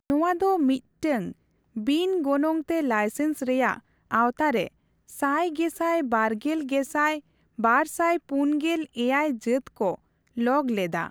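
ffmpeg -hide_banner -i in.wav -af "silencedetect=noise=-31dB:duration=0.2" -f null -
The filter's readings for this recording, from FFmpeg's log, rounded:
silence_start: 0.77
silence_end: 1.03 | silence_duration: 0.25
silence_start: 1.32
silence_end: 1.77 | silence_duration: 0.45
silence_start: 3.76
silence_end: 4.11 | silence_duration: 0.35
silence_start: 4.67
silence_end: 5.19 | silence_duration: 0.51
silence_start: 7.18
silence_end: 7.59 | silence_duration: 0.41
silence_start: 9.95
silence_end: 10.37 | silence_duration: 0.43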